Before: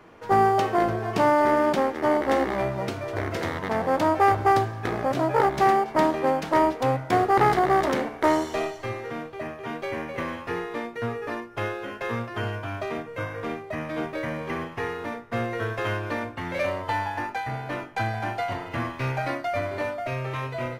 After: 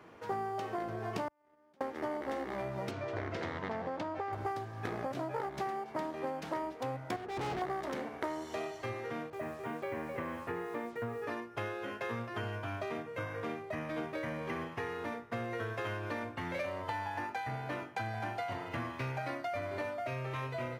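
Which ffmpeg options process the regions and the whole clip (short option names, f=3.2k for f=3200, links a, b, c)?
-filter_complex "[0:a]asettb=1/sr,asplit=3[a][b][c];[a]atrim=end=1.284[d];[b]atrim=start=1.28:end=1.81,asetpts=PTS-STARTPTS,afade=t=in:d=0.004:c=qsin,afade=t=out:st=0.526:d=0.004:c=qsin,agate=range=-36dB:threshold=-16dB:ratio=16:release=100:detection=peak,acompressor=threshold=-56dB:ratio=12:attack=3.2:release=140:knee=1:detection=peak[e];[c]atrim=start=1.806[f];[d][e]acrossfade=d=0.004:c1=hsin:c2=qsin[g];[g][f]acrossfade=d=0.004:c1=qsin:c2=hsin,asettb=1/sr,asplit=3[h][i][j];[h]atrim=end=2.914[k];[i]atrim=start=2.91:end=4.33,asetpts=PTS-STARTPTS,afade=t=in:d=0.004:c=qsin,afade=t=out:st=1.416:d=0.004:c=qsin,lowpass=5.1k,acompressor=threshold=-20dB:ratio=6:attack=3.2:release=140:knee=1:detection=peak[l];[j]atrim=start=4.326[m];[k][l]acrossfade=d=0.004:c1=hsin:c2=qsin[n];[n][m]acrossfade=d=0.004:c1=qsin:c2=hsin,asettb=1/sr,asplit=3[o][p][q];[o]atrim=end=7.164[r];[p]atrim=start=7.16:end=7.62,asetpts=PTS-STARTPTS,afade=t=in:d=0.004:c=qsin,afade=t=out:st=0.456:d=0.004:c=qsin,lowpass=f=1k:p=1,volume=28dB,asoftclip=hard,volume=-28dB[s];[q]atrim=start=7.616[t];[r][s]acrossfade=d=0.004:c1=hsin:c2=qsin[u];[u][t]acrossfade=d=0.004:c1=qsin:c2=hsin,asettb=1/sr,asplit=3[v][w][x];[v]atrim=end=9.304[y];[w]atrim=start=9.3:end=11.24,asetpts=PTS-STARTPTS,afade=t=in:d=0.004:c=qsin,afade=t=out:st=1.936:d=0.004:c=qsin,lowpass=2.9k,acrusher=bits=7:mix=0:aa=0.5,adynamicequalizer=threshold=0.00447:dfrequency=1900:dqfactor=0.7:tfrequency=1900:tqfactor=0.7:attack=5:release=100:ratio=0.375:range=2:mode=cutabove:tftype=highshelf[z];[x]atrim=start=11.236[aa];[y][z]acrossfade=d=0.004:c1=hsin:c2=qsin[ab];[ab][aa]acrossfade=d=0.004:c1=qsin:c2=hsin,acompressor=threshold=-29dB:ratio=6,highpass=62,volume=-5dB"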